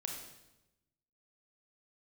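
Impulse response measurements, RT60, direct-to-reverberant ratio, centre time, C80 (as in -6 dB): 0.95 s, 1.0 dB, 41 ms, 6.0 dB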